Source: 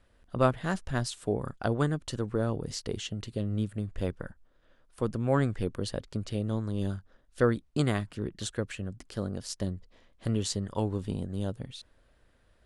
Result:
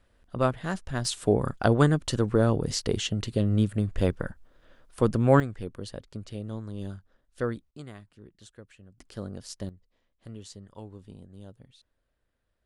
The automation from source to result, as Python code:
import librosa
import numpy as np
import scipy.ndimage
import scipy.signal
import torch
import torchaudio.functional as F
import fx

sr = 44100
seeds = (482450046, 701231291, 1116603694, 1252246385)

y = fx.gain(x, sr, db=fx.steps((0.0, -0.5), (1.05, 7.0), (5.4, -5.0), (7.71, -16.0), (8.98, -3.5), (9.69, -13.5)))